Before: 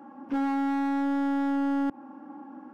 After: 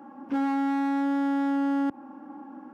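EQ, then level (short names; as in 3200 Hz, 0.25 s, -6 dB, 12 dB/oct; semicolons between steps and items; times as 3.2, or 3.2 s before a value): HPF 63 Hz; +1.0 dB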